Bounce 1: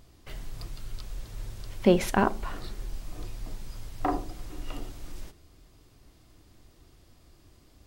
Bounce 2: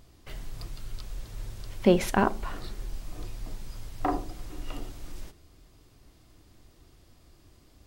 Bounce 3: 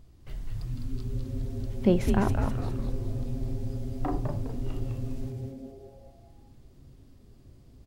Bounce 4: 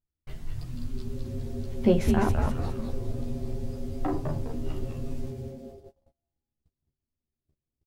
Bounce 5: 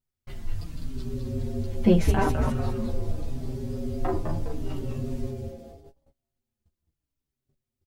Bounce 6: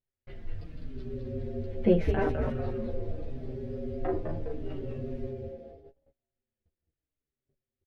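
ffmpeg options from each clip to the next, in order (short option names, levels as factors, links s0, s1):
-af anull
-filter_complex "[0:a]lowshelf=f=360:g=11.5,asplit=2[s0][s1];[s1]asplit=6[s2][s3][s4][s5][s6][s7];[s2]adelay=205,afreqshift=-140,volume=0.631[s8];[s3]adelay=410,afreqshift=-280,volume=0.302[s9];[s4]adelay=615,afreqshift=-420,volume=0.145[s10];[s5]adelay=820,afreqshift=-560,volume=0.07[s11];[s6]adelay=1025,afreqshift=-700,volume=0.0335[s12];[s7]adelay=1230,afreqshift=-840,volume=0.016[s13];[s8][s9][s10][s11][s12][s13]amix=inputs=6:normalize=0[s14];[s0][s14]amix=inputs=2:normalize=0,volume=0.376"
-filter_complex "[0:a]agate=range=0.0141:threshold=0.00562:ratio=16:detection=peak,asplit=2[s0][s1];[s1]adelay=13,volume=0.75[s2];[s0][s2]amix=inputs=2:normalize=0"
-filter_complex "[0:a]asplit=2[s0][s1];[s1]adelay=4.9,afreqshift=-0.8[s2];[s0][s2]amix=inputs=2:normalize=1,volume=1.88"
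-af "firequalizer=gain_entry='entry(220,0);entry(480,9);entry(960,-5);entry(1700,4);entry(7600,-20)':delay=0.05:min_phase=1,volume=0.473"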